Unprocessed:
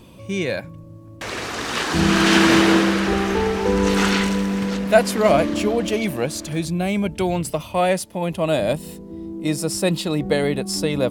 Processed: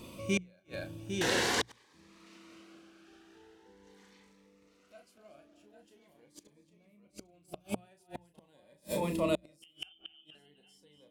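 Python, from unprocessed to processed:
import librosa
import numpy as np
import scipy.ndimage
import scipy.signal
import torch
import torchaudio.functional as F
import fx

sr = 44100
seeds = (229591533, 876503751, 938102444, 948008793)

y = fx.high_shelf(x, sr, hz=2300.0, db=-11.5, at=(6.54, 7.34))
y = fx.freq_invert(y, sr, carrier_hz=3300, at=(9.62, 10.35))
y = fx.doubler(y, sr, ms=34.0, db=-7.0)
y = fx.echo_multitap(y, sr, ms=(239, 803), db=(-13.5, -7.5))
y = fx.gate_flip(y, sr, shuts_db=-15.0, range_db=-40)
y = fx.low_shelf(y, sr, hz=190.0, db=-8.0)
y = fx.hum_notches(y, sr, base_hz=60, count=3)
y = fx.notch_cascade(y, sr, direction='rising', hz=0.43)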